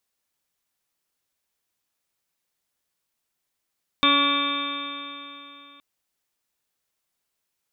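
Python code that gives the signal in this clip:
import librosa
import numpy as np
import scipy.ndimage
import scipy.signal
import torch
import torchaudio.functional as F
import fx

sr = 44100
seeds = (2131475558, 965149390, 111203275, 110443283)

y = fx.additive_stiff(sr, length_s=1.77, hz=282.0, level_db=-23.0, upper_db=(-7, -15, 4, -8, -10.0, -16, -0.5, -7.0, -18.0, -6, 4.5), decay_s=3.17, stiffness=0.00095)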